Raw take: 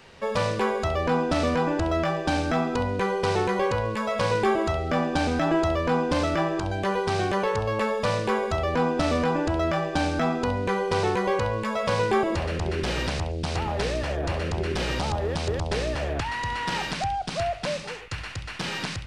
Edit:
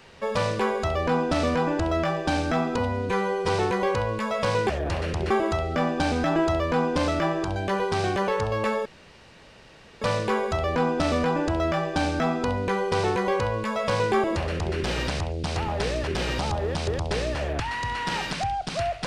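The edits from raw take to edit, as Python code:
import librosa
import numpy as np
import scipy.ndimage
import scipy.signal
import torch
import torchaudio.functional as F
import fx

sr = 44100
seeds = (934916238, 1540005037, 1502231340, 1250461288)

y = fx.edit(x, sr, fx.stretch_span(start_s=2.78, length_s=0.47, factor=1.5),
    fx.insert_room_tone(at_s=8.01, length_s=1.16),
    fx.move(start_s=14.07, length_s=0.61, to_s=4.46), tone=tone)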